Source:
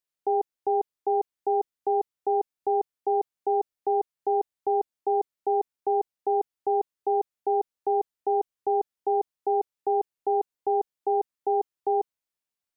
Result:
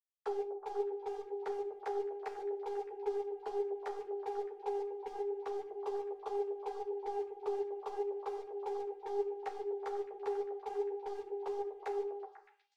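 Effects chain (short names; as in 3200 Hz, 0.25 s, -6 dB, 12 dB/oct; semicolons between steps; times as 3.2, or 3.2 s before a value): sine-wave speech; limiter -26.5 dBFS, peak gain reduction 10.5 dB; sample leveller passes 2; compressor 3:1, threshold -36 dBFS, peak gain reduction 5.5 dB; power-law curve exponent 2; delay with a stepping band-pass 0.123 s, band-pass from 310 Hz, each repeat 0.7 oct, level -2 dB; on a send at -7 dB: reverb RT60 0.50 s, pre-delay 4 ms; on the sum: ensemble effect; gain +4 dB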